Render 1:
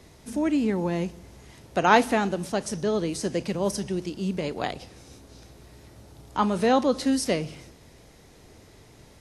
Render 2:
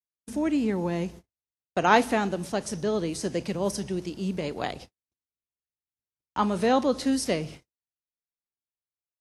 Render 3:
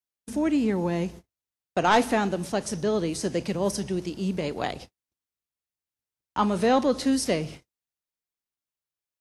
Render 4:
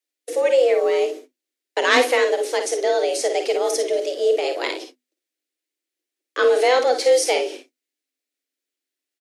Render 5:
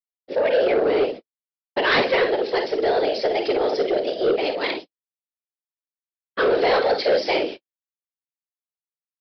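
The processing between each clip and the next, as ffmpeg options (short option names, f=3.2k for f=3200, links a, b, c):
-af "agate=range=-58dB:threshold=-40dB:ratio=16:detection=peak,volume=-1.5dB"
-af "aeval=exprs='0.631*sin(PI/2*2*val(0)/0.631)':c=same,volume=-8dB"
-af "afreqshift=250,equalizer=f=250:t=o:w=1:g=9,equalizer=f=500:t=o:w=1:g=5,equalizer=f=1k:t=o:w=1:g=-10,equalizer=f=2k:t=o:w=1:g=7,equalizer=f=4k:t=o:w=1:g=4,equalizer=f=8k:t=o:w=1:g=3,aecho=1:1:50|61:0.376|0.237,volume=2.5dB"
-af "agate=range=-56dB:threshold=-30dB:ratio=16:detection=peak,afftfilt=real='hypot(re,im)*cos(2*PI*random(0))':imag='hypot(re,im)*sin(2*PI*random(1))':win_size=512:overlap=0.75,aresample=11025,asoftclip=type=tanh:threshold=-20.5dB,aresample=44100,volume=7.5dB"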